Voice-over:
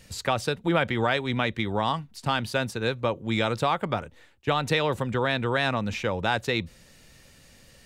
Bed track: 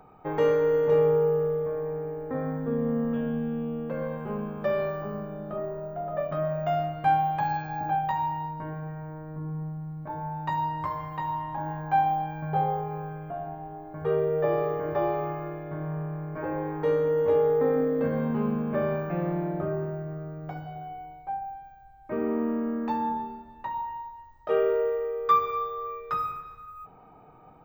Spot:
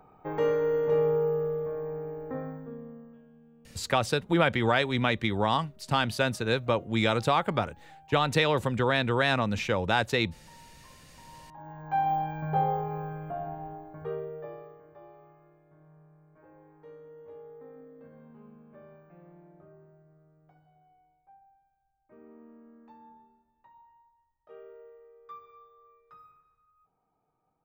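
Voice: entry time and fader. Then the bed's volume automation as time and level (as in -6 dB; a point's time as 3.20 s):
3.65 s, 0.0 dB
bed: 2.32 s -3.5 dB
3.27 s -27 dB
11.07 s -27 dB
12.14 s -0.5 dB
13.69 s -0.5 dB
14.89 s -25 dB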